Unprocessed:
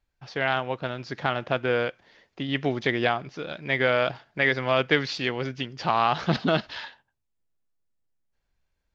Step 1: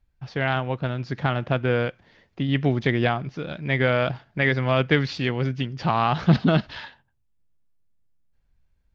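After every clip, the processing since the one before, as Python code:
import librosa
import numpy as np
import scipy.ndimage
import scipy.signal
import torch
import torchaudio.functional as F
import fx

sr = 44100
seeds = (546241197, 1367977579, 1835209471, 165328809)

y = fx.bass_treble(x, sr, bass_db=11, treble_db=-4)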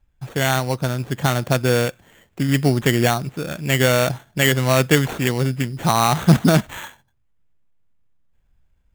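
y = fx.sample_hold(x, sr, seeds[0], rate_hz=5000.0, jitter_pct=0)
y = y * 10.0 ** (4.5 / 20.0)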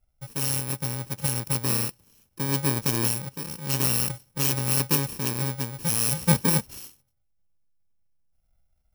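y = fx.bit_reversed(x, sr, seeds[1], block=64)
y = y * 10.0 ** (-7.5 / 20.0)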